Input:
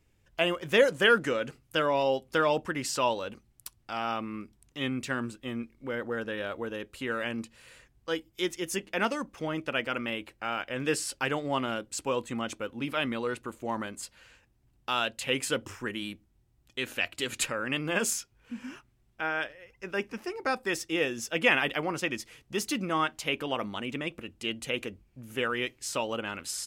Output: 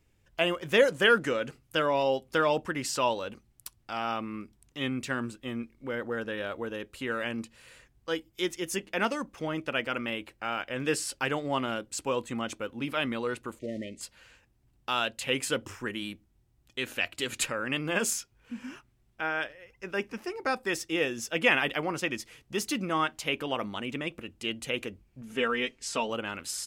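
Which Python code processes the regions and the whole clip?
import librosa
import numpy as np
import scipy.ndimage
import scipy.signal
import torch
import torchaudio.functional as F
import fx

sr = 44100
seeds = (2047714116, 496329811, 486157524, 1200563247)

y = fx.chain(x, sr, fx.block_float(bits=5),
    fx.brickwall_bandstop(low_hz=670.0, high_hz=1800.0),
    fx.air_absorb(metres=100.0), at=(13.59, 14.01))
y = fx.chain(y, sr, fx.lowpass(hz=8300.0, slope=12),
    fx.comb(ms=4.4, depth=0.62), at=(25.21, 26.1))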